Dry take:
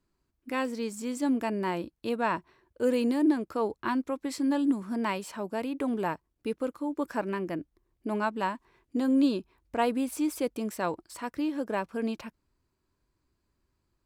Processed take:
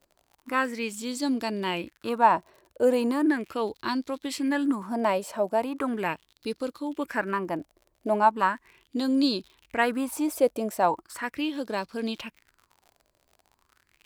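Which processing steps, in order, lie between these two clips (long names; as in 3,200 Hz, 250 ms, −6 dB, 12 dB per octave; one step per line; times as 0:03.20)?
high-shelf EQ 8,500 Hz +6 dB
surface crackle 55 per second −44 dBFS
auto-filter bell 0.38 Hz 590–4,500 Hz +14 dB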